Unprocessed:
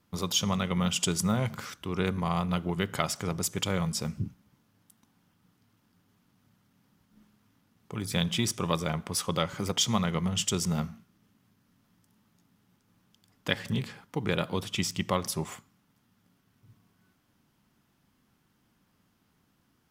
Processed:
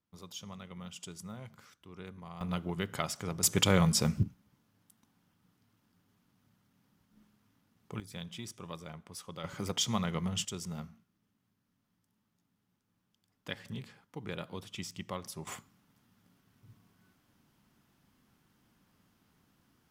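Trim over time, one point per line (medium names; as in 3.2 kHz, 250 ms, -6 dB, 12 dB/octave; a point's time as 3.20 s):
-18 dB
from 2.41 s -5.5 dB
from 3.43 s +4 dB
from 4.23 s -4 dB
from 8.00 s -15.5 dB
from 9.44 s -5 dB
from 10.45 s -11.5 dB
from 15.47 s 0 dB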